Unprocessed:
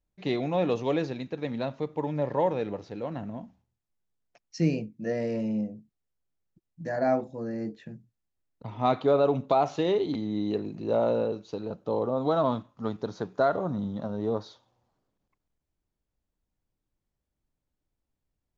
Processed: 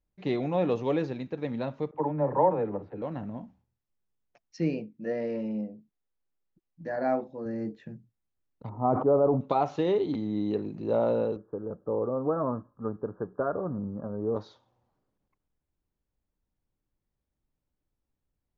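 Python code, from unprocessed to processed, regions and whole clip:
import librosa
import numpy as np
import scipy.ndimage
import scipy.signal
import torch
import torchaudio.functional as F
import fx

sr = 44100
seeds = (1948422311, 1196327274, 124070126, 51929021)

y = fx.chain(x, sr, fx.lowpass(hz=1600.0, slope=12),
    fx.dispersion(late='lows', ms=40.0, hz=370.0),
    fx.dynamic_eq(hz=920.0, q=1.2, threshold_db=-39.0, ratio=4.0, max_db=6), at=(1.91, 3.02))
y = fx.chain(y, sr, fx.lowpass(hz=5300.0, slope=24),
    fx.peak_eq(hz=96.0, db=-11.5, octaves=1.5), at=(4.57, 7.46))
y = fx.chain(y, sr, fx.lowpass(hz=1100.0, slope=24),
    fx.sustainer(db_per_s=75.0), at=(8.69, 9.41))
y = fx.chain(y, sr, fx.cheby_ripple(hz=1700.0, ripple_db=6),
    fx.low_shelf(hz=79.0, db=11.5), at=(11.36, 14.36))
y = fx.high_shelf(y, sr, hz=3300.0, db=-10.0)
y = fx.notch(y, sr, hz=670.0, q=17.0)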